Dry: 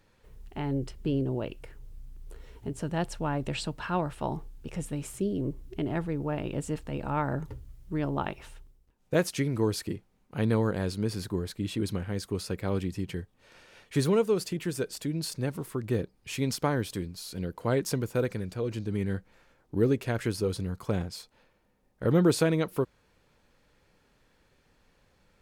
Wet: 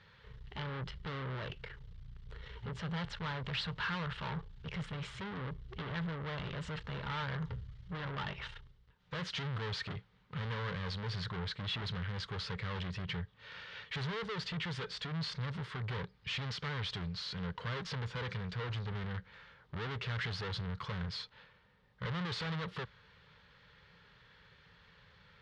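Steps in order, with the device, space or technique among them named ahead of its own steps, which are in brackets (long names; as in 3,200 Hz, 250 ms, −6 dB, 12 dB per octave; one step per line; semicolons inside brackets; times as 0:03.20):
scooped metal amplifier (tube saturation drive 42 dB, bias 0.4; loudspeaker in its box 76–3,500 Hz, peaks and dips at 120 Hz +4 dB, 170 Hz +9 dB, 270 Hz +6 dB, 430 Hz +7 dB, 710 Hz −8 dB, 2,500 Hz −8 dB; guitar amp tone stack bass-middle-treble 10-0-10)
level +17 dB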